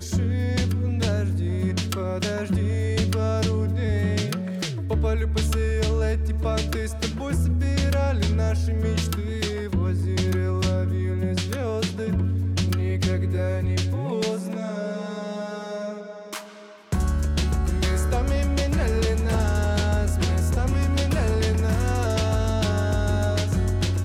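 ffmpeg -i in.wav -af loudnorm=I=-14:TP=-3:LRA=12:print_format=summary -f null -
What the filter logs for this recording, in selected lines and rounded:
Input Integrated:    -24.4 LUFS
Input True Peak:     -14.3 dBTP
Input LRA:             3.8 LU
Input Threshold:     -34.5 LUFS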